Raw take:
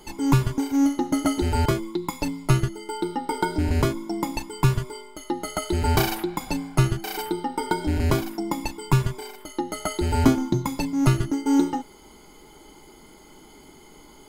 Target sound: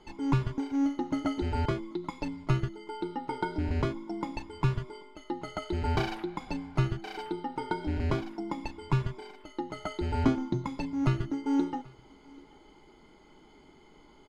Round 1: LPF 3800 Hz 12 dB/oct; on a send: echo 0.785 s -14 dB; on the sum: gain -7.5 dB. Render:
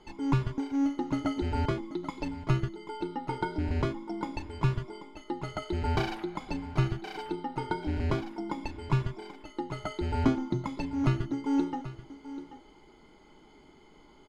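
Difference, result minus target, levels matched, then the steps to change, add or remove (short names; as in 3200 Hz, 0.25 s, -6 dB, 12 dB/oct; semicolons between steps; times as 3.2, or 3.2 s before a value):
echo-to-direct +11.5 dB
change: echo 0.785 s -25.5 dB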